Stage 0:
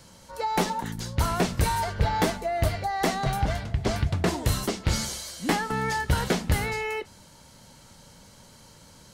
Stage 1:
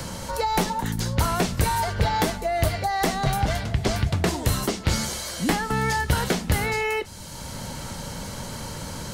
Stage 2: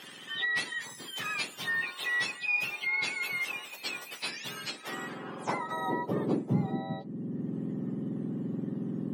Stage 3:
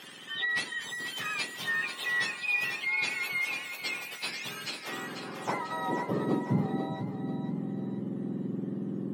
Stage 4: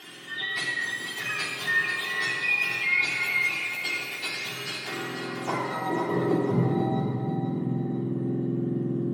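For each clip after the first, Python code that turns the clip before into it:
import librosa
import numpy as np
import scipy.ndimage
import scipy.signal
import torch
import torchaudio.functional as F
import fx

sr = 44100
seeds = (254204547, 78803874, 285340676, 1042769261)

y1 = fx.high_shelf(x, sr, hz=9500.0, db=4.5)
y1 = fx.band_squash(y1, sr, depth_pct=70)
y1 = F.gain(torch.from_numpy(y1), 2.5).numpy()
y2 = fx.octave_mirror(y1, sr, pivot_hz=1300.0)
y2 = fx.filter_sweep_bandpass(y2, sr, from_hz=3000.0, to_hz=230.0, start_s=4.64, end_s=6.59, q=1.3)
y3 = fx.echo_feedback(y2, sr, ms=491, feedback_pct=44, wet_db=-8)
y4 = fx.room_shoebox(y3, sr, seeds[0], volume_m3=3400.0, walls='mixed', distance_m=3.3)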